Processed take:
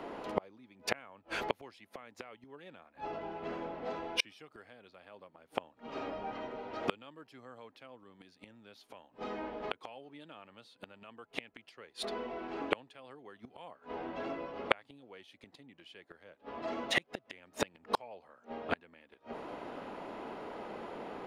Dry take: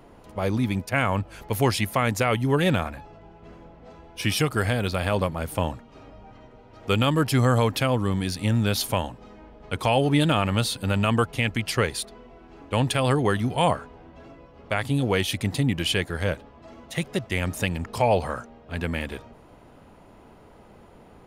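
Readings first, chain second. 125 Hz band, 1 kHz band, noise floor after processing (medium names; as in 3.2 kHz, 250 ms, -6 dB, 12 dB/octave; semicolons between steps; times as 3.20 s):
-31.5 dB, -13.0 dB, -70 dBFS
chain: three-band isolator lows -21 dB, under 230 Hz, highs -13 dB, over 5 kHz; inverted gate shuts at -24 dBFS, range -37 dB; treble shelf 8.4 kHz -4 dB; trim +9 dB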